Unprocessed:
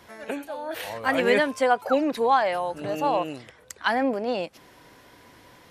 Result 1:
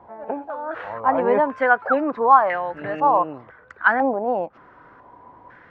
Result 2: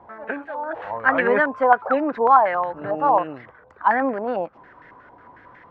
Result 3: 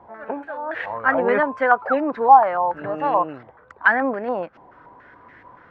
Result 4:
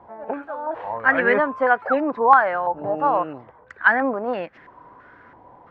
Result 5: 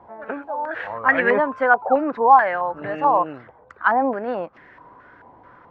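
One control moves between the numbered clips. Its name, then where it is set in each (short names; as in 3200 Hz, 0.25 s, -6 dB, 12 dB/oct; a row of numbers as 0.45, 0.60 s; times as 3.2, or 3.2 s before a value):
stepped low-pass, rate: 2, 11, 7, 3, 4.6 Hz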